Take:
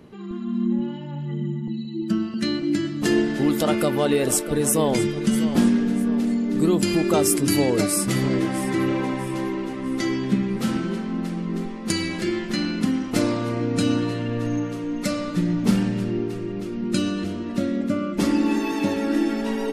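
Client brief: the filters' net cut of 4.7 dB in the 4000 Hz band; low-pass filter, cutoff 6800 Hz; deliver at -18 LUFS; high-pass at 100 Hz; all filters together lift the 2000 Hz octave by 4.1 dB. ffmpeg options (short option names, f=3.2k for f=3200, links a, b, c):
-af "highpass=100,lowpass=6.8k,equalizer=f=2k:t=o:g=7,equalizer=f=4k:t=o:g=-8.5,volume=5.5dB"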